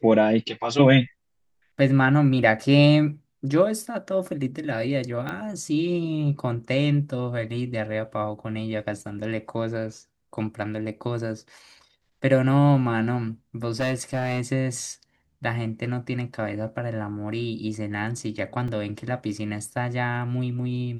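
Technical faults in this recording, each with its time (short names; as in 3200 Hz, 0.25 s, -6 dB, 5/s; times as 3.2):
5.29 pop -18 dBFS
13.7–14.41 clipped -20.5 dBFS
18.68 gap 3.7 ms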